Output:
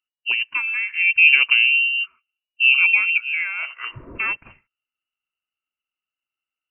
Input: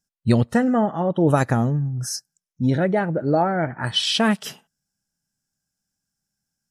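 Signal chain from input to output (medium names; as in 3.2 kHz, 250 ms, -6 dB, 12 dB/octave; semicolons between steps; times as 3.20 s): 0.93–3.18 s: resonant low shelf 690 Hz +9 dB, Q 1.5; frequency inversion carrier 2.9 kHz; trim -5.5 dB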